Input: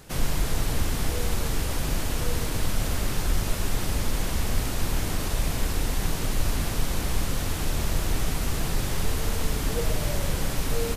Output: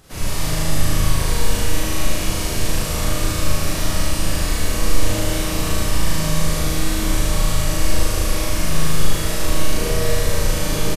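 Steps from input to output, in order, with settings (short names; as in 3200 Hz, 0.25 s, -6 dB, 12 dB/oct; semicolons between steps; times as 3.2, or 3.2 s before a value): harmoniser -4 st -3 dB, -3 st -4 dB; flutter echo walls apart 6.5 m, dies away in 1.1 s; Schroeder reverb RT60 1.7 s, combs from 28 ms, DRR -6.5 dB; gain -6 dB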